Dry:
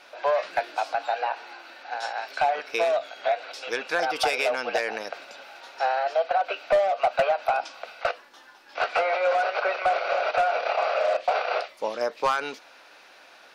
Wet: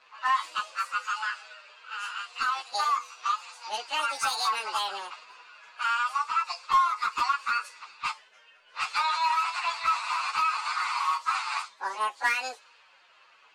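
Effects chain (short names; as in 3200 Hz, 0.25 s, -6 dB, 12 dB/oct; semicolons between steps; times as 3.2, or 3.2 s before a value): pitch shift by moving bins +10 st; low-pass opened by the level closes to 2700 Hz, open at -25.5 dBFS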